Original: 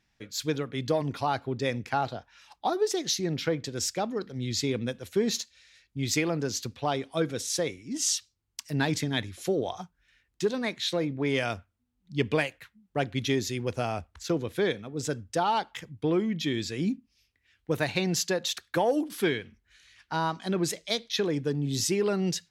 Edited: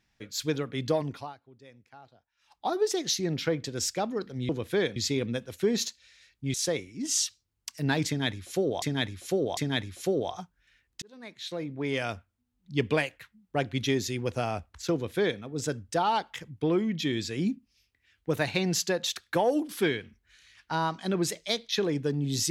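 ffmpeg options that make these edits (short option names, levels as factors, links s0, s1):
-filter_complex "[0:a]asplit=9[s0][s1][s2][s3][s4][s5][s6][s7][s8];[s0]atrim=end=1.35,asetpts=PTS-STARTPTS,afade=t=out:st=0.95:d=0.4:silence=0.0668344[s9];[s1]atrim=start=1.35:end=2.37,asetpts=PTS-STARTPTS,volume=0.0668[s10];[s2]atrim=start=2.37:end=4.492,asetpts=PTS-STARTPTS,afade=t=in:d=0.4:silence=0.0668344[s11];[s3]atrim=start=14.338:end=14.812[s12];[s4]atrim=start=4.488:end=6.072[s13];[s5]atrim=start=7.448:end=9.732[s14];[s6]atrim=start=8.978:end=9.732[s15];[s7]atrim=start=8.978:end=10.43,asetpts=PTS-STARTPTS,afade=t=out:st=1.448:d=0.004:c=hsin[s16];[s8]atrim=start=10.43,asetpts=PTS-STARTPTS,afade=t=in:d=1.78:c=qsin[s17];[s9][s10][s11]concat=n=3:v=0:a=1[s18];[s18][s12]acrossfade=d=0.004:c1=hsin:c2=hsin[s19];[s19][s13]acrossfade=d=0.004:c1=hsin:c2=hsin[s20];[s20][s14]acrossfade=d=0.004:c1=hsin:c2=hsin[s21];[s21][s15]acrossfade=d=0.004:c1=hsin:c2=hsin[s22];[s16][s17]concat=n=2:v=0:a=1[s23];[s22][s23]acrossfade=d=0.004:c1=hsin:c2=hsin"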